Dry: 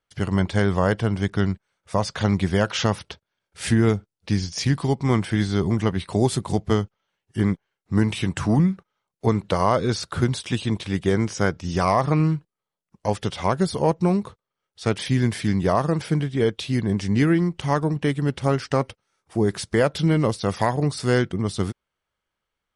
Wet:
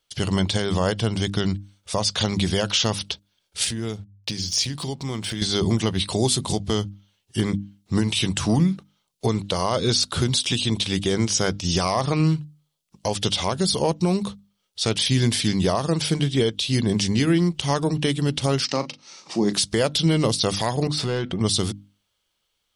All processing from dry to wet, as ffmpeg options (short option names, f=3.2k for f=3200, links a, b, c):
-filter_complex "[0:a]asettb=1/sr,asplit=3[a][b][c];[a]atrim=end=3.644[d];[b]atrim=start=3.64:end=5.42,asetpts=PTS-STARTPTS,afade=t=in:d=0.004:c=qsin,afade=t=out:st=1.776:d=0.004:c=qsin,aeval=exprs='sgn(val(0))*max(abs(val(0))-0.00211,0)':c=same,bandreject=f=50:t=h:w=6,bandreject=f=100:t=h:w=6,acompressor=threshold=-32dB:ratio=3:attack=3.2:release=140:knee=1:detection=peak[e];[c]atrim=start=5.416[f];[d][e]acrossfade=d=0.004:c1=hsin:c2=qsin[g];[g][f]acrossfade=d=0.004:c1=qsin:c2=hsin,asettb=1/sr,asplit=3[h][i][j];[h]atrim=end=18.654[k];[i]atrim=start=18.65:end=19.53,asetpts=PTS-STARTPTS,afade=t=in:d=0.004:c=qsin,afade=t=out:st=0.876:d=0.004:c=qsin,acompressor=mode=upward:threshold=-29dB:ratio=2.5:attack=3.2:release=140:knee=2.83:detection=peak,highpass=f=170:w=0.5412,highpass=f=170:w=1.3066,equalizer=f=430:t=q:w=4:g=-8,equalizer=f=700:t=q:w=4:g=-4,equalizer=f=1.5k:t=q:w=4:g=-8,equalizer=f=3.3k:t=q:w=4:g=-10,lowpass=f=6.1k:w=0.5412,lowpass=f=6.1k:w=1.3066,asplit=2[l][m];[m]adelay=39,volume=-12dB[n];[l][n]amix=inputs=2:normalize=0,atrim=end_sample=38808[o];[j]atrim=start=19.526[p];[k][o]acrossfade=d=0.004:c1=hsin:c2=qsin[q];[q][p]acrossfade=d=0.004:c1=qsin:c2=hsin,asettb=1/sr,asplit=3[r][s][t];[r]atrim=end=20.874[u];[s]atrim=start=20.87:end=21.41,asetpts=PTS-STARTPTS,afade=t=in:d=0.004:c=qsin,afade=t=out:st=0.536:d=0.004:c=qsin,bass=f=250:g=6,treble=f=4k:g=-6,acompressor=threshold=-23dB:ratio=6:attack=3.2:release=140:knee=1:detection=peak,asplit=2[v][w];[w]highpass=f=720:p=1,volume=14dB,asoftclip=type=tanh:threshold=-15.5dB[x];[v][x]amix=inputs=2:normalize=0,lowpass=f=1.4k:p=1,volume=-6dB[y];[t]atrim=start=21.406[z];[u][y]acrossfade=d=0.004:c1=hsin:c2=qsin[aa];[aa][z]acrossfade=d=0.004:c1=qsin:c2=hsin,highshelf=f=2.5k:t=q:w=1.5:g=9,bandreject=f=50:t=h:w=6,bandreject=f=100:t=h:w=6,bandreject=f=150:t=h:w=6,bandreject=f=200:t=h:w=6,bandreject=f=250:t=h:w=6,bandreject=f=300:t=h:w=6,alimiter=limit=-14dB:level=0:latency=1:release=199,volume=3.5dB"